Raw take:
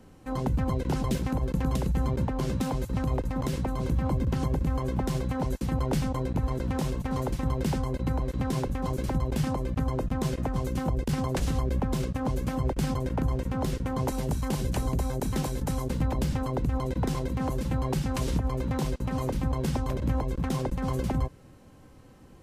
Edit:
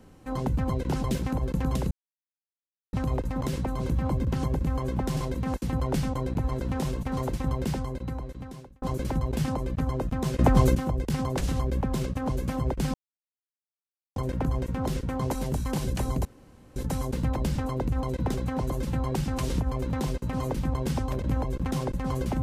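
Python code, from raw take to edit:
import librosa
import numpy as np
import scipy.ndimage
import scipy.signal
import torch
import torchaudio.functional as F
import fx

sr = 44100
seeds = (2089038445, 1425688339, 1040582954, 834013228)

y = fx.edit(x, sr, fx.silence(start_s=1.91, length_s=1.02),
    fx.swap(start_s=5.17, length_s=0.36, other_s=17.11, other_length_s=0.37),
    fx.fade_out_span(start_s=7.5, length_s=1.31),
    fx.clip_gain(start_s=10.38, length_s=0.36, db=10.0),
    fx.insert_silence(at_s=12.93, length_s=1.22),
    fx.room_tone_fill(start_s=15.02, length_s=0.51), tone=tone)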